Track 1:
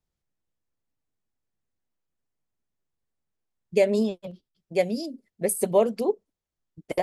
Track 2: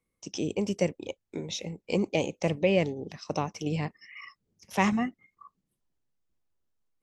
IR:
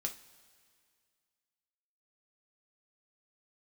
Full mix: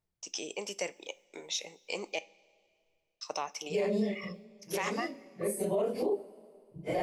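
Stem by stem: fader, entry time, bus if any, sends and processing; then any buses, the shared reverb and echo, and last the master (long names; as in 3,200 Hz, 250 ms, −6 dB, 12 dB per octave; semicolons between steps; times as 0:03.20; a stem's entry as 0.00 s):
−3.5 dB, 0.00 s, send −3.5 dB, random phases in long frames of 100 ms; high-shelf EQ 4,600 Hz −6.5 dB; automatic ducking −12 dB, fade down 0.20 s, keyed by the second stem
−2.0 dB, 0.00 s, muted 0:02.19–0:03.21, send −8 dB, noise gate with hold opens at −50 dBFS; high-pass filter 720 Hz 12 dB per octave; high-shelf EQ 8,900 Hz +8.5 dB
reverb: on, pre-delay 3 ms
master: brickwall limiter −22 dBFS, peak gain reduction 12 dB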